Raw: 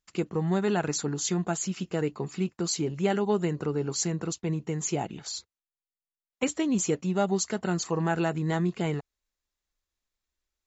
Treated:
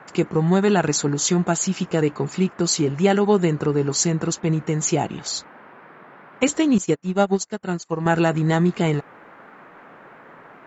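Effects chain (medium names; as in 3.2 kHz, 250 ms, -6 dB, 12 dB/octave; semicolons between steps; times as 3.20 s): band noise 140–1700 Hz -54 dBFS; 6.78–8.06 s: upward expansion 2.5:1, over -43 dBFS; trim +8.5 dB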